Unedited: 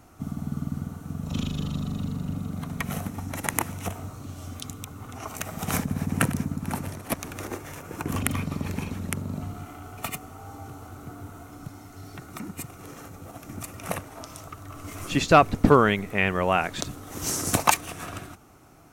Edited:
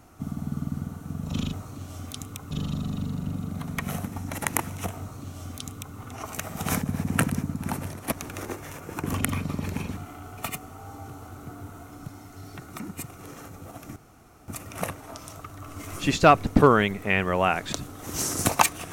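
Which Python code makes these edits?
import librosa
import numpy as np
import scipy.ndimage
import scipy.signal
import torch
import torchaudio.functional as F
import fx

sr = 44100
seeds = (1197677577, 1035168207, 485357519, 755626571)

y = fx.edit(x, sr, fx.duplicate(start_s=4.01, length_s=0.98, to_s=1.53),
    fx.cut(start_s=8.99, length_s=0.58),
    fx.insert_room_tone(at_s=13.56, length_s=0.52), tone=tone)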